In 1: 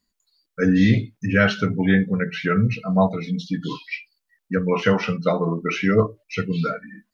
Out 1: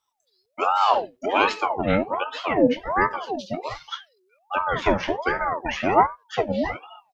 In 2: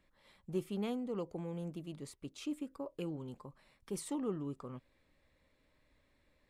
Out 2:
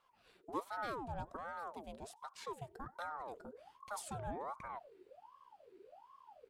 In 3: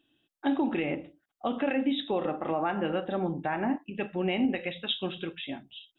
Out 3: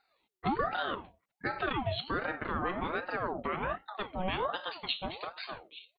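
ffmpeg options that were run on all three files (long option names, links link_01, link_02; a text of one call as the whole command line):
ffmpeg -i in.wav -filter_complex "[0:a]asplit=2[link_01][link_02];[link_02]adelay=93.29,volume=-29dB,highshelf=frequency=4000:gain=-2.1[link_03];[link_01][link_03]amix=inputs=2:normalize=0,asubboost=boost=9:cutoff=87,aeval=exprs='val(0)*sin(2*PI*730*n/s+730*0.5/1.3*sin(2*PI*1.3*n/s))':channel_layout=same" out.wav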